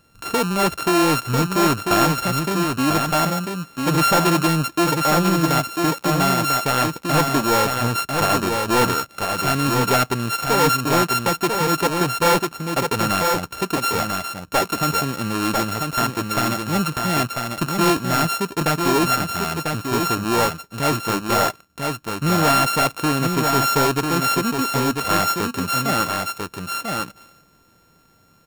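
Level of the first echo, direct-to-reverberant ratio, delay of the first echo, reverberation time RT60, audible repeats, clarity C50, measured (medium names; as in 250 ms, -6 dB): -4.5 dB, no reverb, 995 ms, no reverb, 1, no reverb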